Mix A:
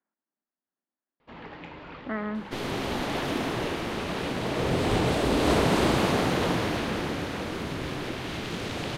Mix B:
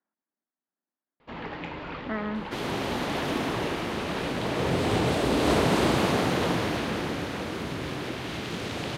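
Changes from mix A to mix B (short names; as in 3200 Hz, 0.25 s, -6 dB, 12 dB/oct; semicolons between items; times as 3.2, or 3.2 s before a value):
first sound +6.0 dB; second sound: add HPF 60 Hz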